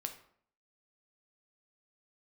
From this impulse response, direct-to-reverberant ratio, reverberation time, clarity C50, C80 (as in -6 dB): 5.5 dB, 0.60 s, 10.5 dB, 14.0 dB